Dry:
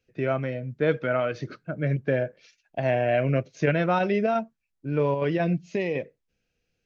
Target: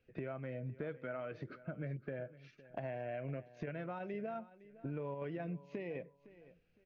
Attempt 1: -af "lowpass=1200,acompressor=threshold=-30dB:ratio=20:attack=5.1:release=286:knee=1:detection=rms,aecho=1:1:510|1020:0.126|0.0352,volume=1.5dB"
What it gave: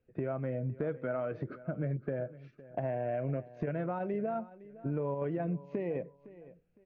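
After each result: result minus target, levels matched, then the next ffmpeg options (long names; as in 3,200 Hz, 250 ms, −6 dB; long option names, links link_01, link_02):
downward compressor: peak gain reduction −8 dB; 2,000 Hz band −5.5 dB
-af "lowpass=1200,acompressor=threshold=-38dB:ratio=20:attack=5.1:release=286:knee=1:detection=rms,aecho=1:1:510|1020:0.126|0.0352,volume=1.5dB"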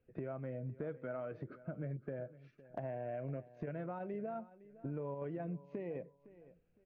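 2,000 Hz band −5.5 dB
-af "lowpass=2600,acompressor=threshold=-38dB:ratio=20:attack=5.1:release=286:knee=1:detection=rms,aecho=1:1:510|1020:0.126|0.0352,volume=1.5dB"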